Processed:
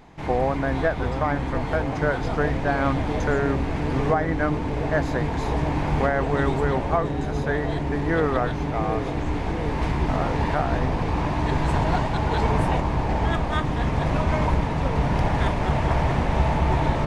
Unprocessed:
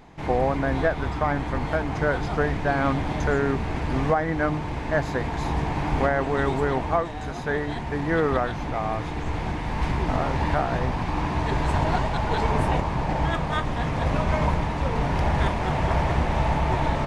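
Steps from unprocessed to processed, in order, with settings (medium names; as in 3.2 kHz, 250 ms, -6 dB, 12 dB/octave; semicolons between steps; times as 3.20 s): feedback echo behind a low-pass 710 ms, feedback 80%, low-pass 480 Hz, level -6 dB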